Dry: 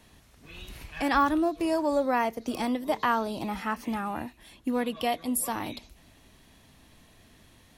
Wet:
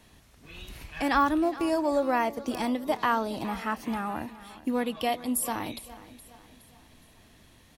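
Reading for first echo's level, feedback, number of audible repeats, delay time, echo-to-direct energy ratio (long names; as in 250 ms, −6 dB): −17.0 dB, 46%, 3, 416 ms, −16.0 dB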